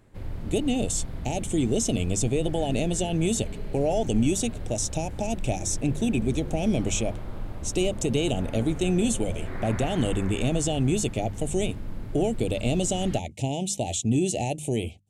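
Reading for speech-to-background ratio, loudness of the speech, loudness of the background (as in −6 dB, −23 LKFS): 11.5 dB, −27.0 LKFS, −38.5 LKFS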